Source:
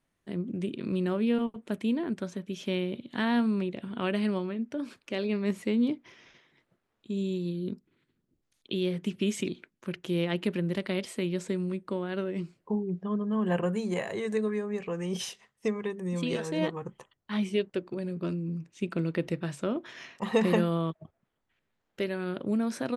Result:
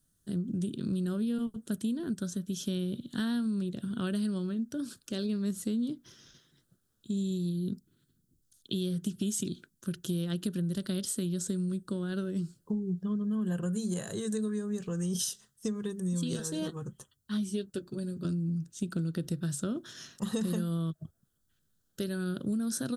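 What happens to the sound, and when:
0:16.39–0:18.25: notch comb filter 170 Hz
whole clip: drawn EQ curve 150 Hz 0 dB, 920 Hz −19 dB, 1,500 Hz −6 dB, 2,200 Hz −25 dB, 3,300 Hz −5 dB, 9,100 Hz +8 dB; downward compressor, threshold −35 dBFS; level +6.5 dB

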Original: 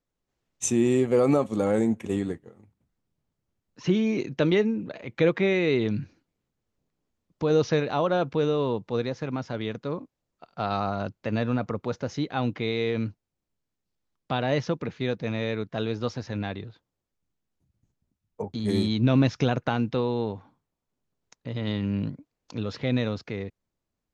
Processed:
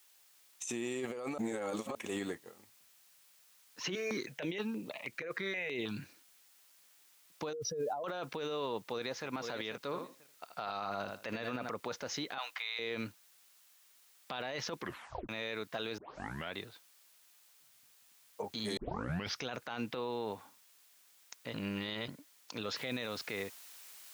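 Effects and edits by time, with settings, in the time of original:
0:01.38–0:01.95: reverse
0:03.95–0:05.97: step-sequenced phaser 6.3 Hz 900–6,000 Hz
0:07.53–0:08.04: expanding power law on the bin magnitudes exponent 2.7
0:08.74–0:09.28: delay throw 490 ms, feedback 15%, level −12 dB
0:09.84–0:11.69: repeating echo 80 ms, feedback 17%, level −9.5 dB
0:12.38–0:12.79: high-pass filter 840 Hz 24 dB per octave
0:14.77: tape stop 0.52 s
0:15.98: tape start 0.56 s
0:18.77: tape start 0.60 s
0:19.91–0:20.32: high-frequency loss of the air 140 metres
0:21.54–0:22.08: reverse
0:22.76: noise floor change −69 dB −58 dB
whole clip: high-pass filter 1,200 Hz 6 dB per octave; compressor whose output falls as the input rises −37 dBFS, ratio −1; brickwall limiter −29.5 dBFS; level +2 dB

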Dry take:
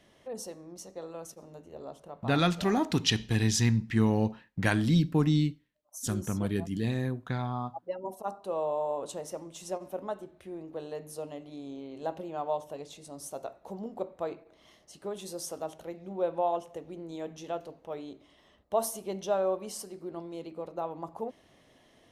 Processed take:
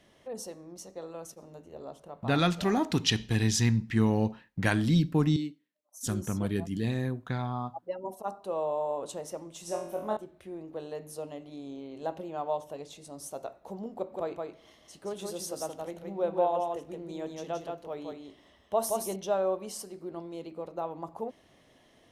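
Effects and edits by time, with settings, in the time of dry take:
0:05.36–0:06.01: four-pole ladder high-pass 190 Hz, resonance 25%
0:09.65–0:10.17: flutter between parallel walls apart 4 metres, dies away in 0.55 s
0:13.95–0:19.16: single-tap delay 172 ms −3.5 dB

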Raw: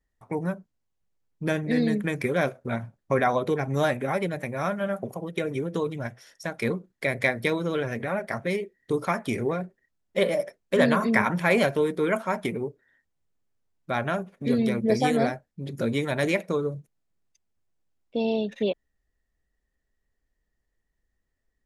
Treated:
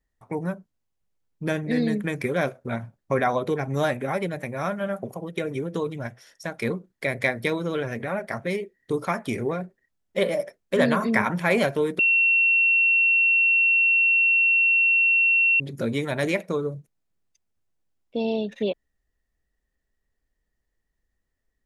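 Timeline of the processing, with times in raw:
0:11.99–0:15.60: beep over 2,720 Hz −16 dBFS

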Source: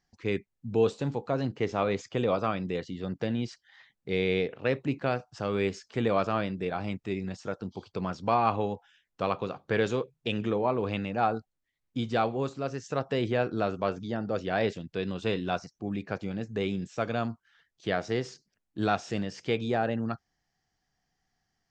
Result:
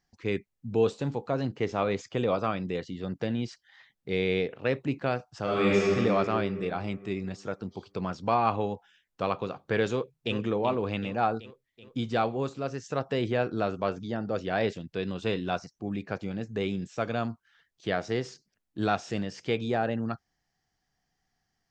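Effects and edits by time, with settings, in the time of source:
0:05.41–0:05.87: thrown reverb, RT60 2.8 s, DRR −7 dB
0:09.92–0:10.36: delay throw 380 ms, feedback 60%, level −9 dB

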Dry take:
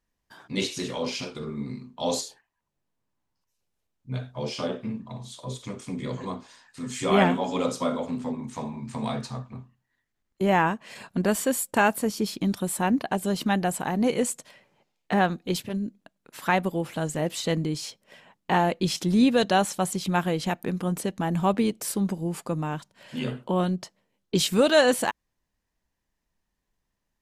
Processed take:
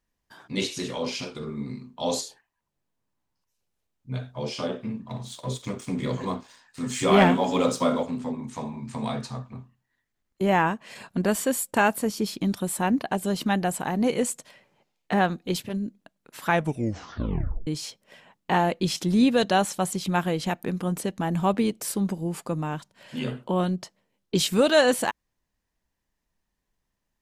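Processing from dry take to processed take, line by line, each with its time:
0:05.08–0:08.03: leveller curve on the samples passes 1
0:16.46: tape stop 1.21 s

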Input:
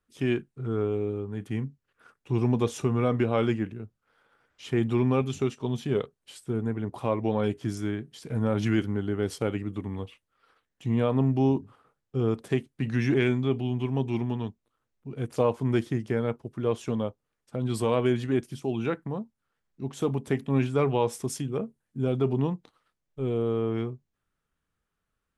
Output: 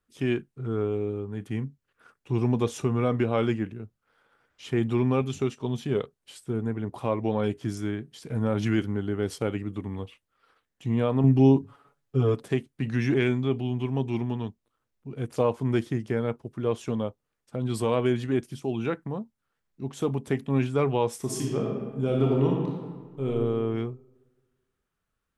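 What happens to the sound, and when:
0:11.23–0:12.44: comb filter 7.1 ms, depth 97%
0:21.18–0:23.28: thrown reverb, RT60 1.5 s, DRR −1.5 dB

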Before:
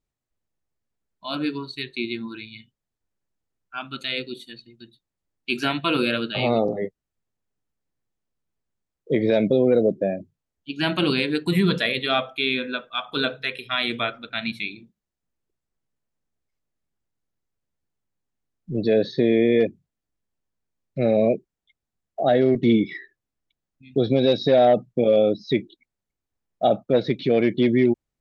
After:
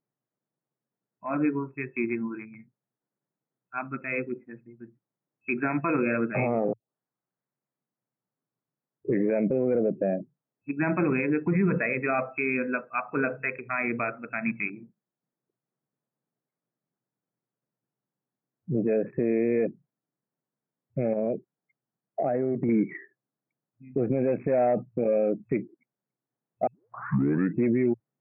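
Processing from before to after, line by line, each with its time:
0:06.73: tape start 2.65 s
0:21.13–0:22.69: downward compressor 10 to 1, threshold −23 dBFS
0:26.67: tape start 0.97 s
whole clip: adaptive Wiener filter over 15 samples; brick-wall band-pass 110–2,600 Hz; brickwall limiter −18 dBFS; level +1.5 dB

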